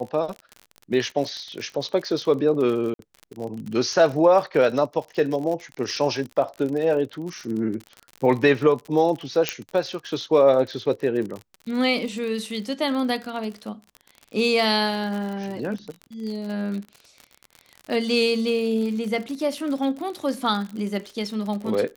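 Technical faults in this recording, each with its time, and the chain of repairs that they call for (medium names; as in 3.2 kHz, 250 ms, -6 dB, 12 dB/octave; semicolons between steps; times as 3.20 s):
crackle 50 per s -30 dBFS
2.94–2.99 s: dropout 52 ms
9.49 s: pop -5 dBFS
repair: de-click; interpolate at 2.94 s, 52 ms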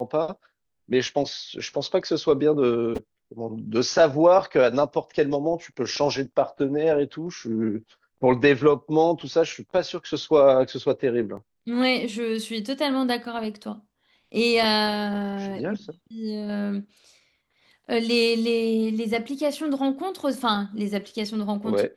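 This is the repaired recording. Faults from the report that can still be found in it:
nothing left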